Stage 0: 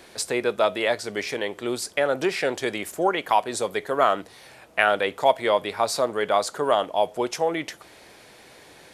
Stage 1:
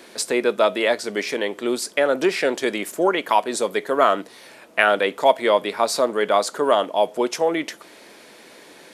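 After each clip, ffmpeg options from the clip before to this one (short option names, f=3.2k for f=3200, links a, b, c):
-af "lowshelf=f=150:t=q:w=1.5:g=-12.5,bandreject=f=770:w=12,volume=3dB"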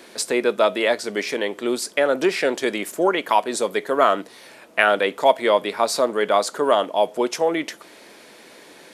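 -af anull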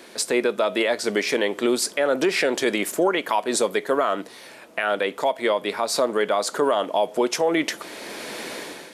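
-af "dynaudnorm=f=200:g=5:m=14dB,alimiter=limit=-11dB:level=0:latency=1:release=172"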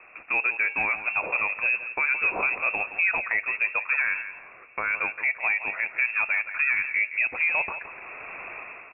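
-filter_complex "[0:a]asplit=2[a][b];[b]aecho=0:1:170|340|510:0.266|0.0665|0.0166[c];[a][c]amix=inputs=2:normalize=0,lowpass=f=2.5k:t=q:w=0.5098,lowpass=f=2.5k:t=q:w=0.6013,lowpass=f=2.5k:t=q:w=0.9,lowpass=f=2.5k:t=q:w=2.563,afreqshift=-2900,volume=-4dB"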